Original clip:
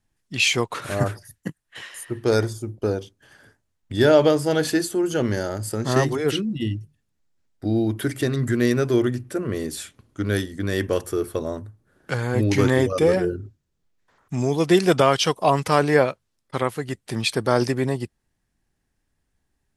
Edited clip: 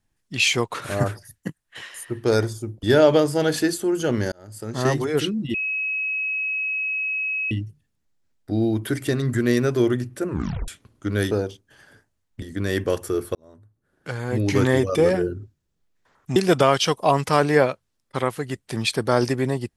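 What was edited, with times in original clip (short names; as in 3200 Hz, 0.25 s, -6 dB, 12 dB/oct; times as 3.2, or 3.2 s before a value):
2.83–3.94 move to 10.45
5.43–6.1 fade in
6.65 add tone 2560 Hz -22.5 dBFS 1.97 s
9.42 tape stop 0.40 s
11.38–12.74 fade in
14.39–14.75 cut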